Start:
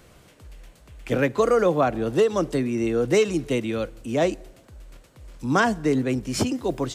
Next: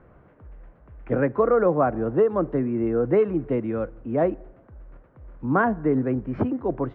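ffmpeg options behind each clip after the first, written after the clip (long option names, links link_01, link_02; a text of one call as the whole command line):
ffmpeg -i in.wav -af "lowpass=frequency=1600:width=0.5412,lowpass=frequency=1600:width=1.3066" out.wav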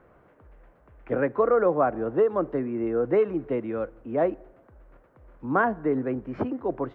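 ffmpeg -i in.wav -af "bass=frequency=250:gain=-8,treble=frequency=4000:gain=6,volume=-1dB" out.wav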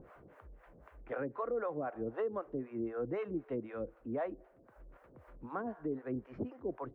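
ffmpeg -i in.wav -filter_complex "[0:a]acrossover=split=540[link_01][link_02];[link_01]aeval=exprs='val(0)*(1-1/2+1/2*cos(2*PI*3.9*n/s))':channel_layout=same[link_03];[link_02]aeval=exprs='val(0)*(1-1/2-1/2*cos(2*PI*3.9*n/s))':channel_layout=same[link_04];[link_03][link_04]amix=inputs=2:normalize=0,acompressor=mode=upward:threshold=-45dB:ratio=2.5,alimiter=level_in=0.5dB:limit=-24dB:level=0:latency=1:release=330,volume=-0.5dB,volume=-3.5dB" out.wav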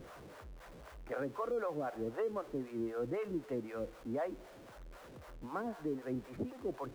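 ffmpeg -i in.wav -af "aeval=exprs='val(0)+0.5*0.00299*sgn(val(0))':channel_layout=same,volume=-1dB" out.wav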